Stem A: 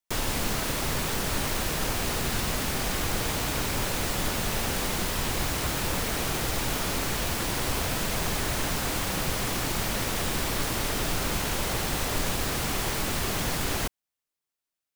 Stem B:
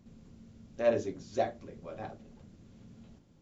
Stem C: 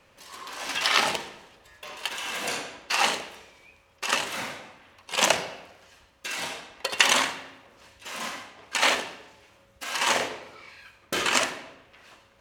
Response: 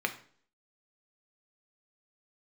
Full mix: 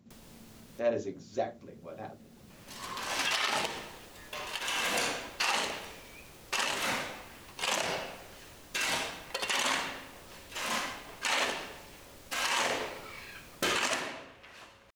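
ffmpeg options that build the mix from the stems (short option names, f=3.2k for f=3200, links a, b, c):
-filter_complex "[0:a]acrossover=split=220|660|2400[a][b][c][d];[a]acompressor=threshold=-43dB:ratio=4[e];[b]acompressor=threshold=-43dB:ratio=4[f];[c]acompressor=threshold=-50dB:ratio=4[g];[d]acompressor=threshold=-41dB:ratio=4[h];[e][f][g][h]amix=inputs=4:normalize=0,volume=-15.5dB[i];[1:a]highpass=100,volume=-1dB,asplit=2[j][k];[2:a]adelay=2500,volume=1dB[l];[k]apad=whole_len=659695[m];[i][m]sidechaincompress=threshold=-52dB:ratio=6:attack=11:release=617[n];[n][j][l]amix=inputs=3:normalize=0,alimiter=limit=-18.5dB:level=0:latency=1:release=129"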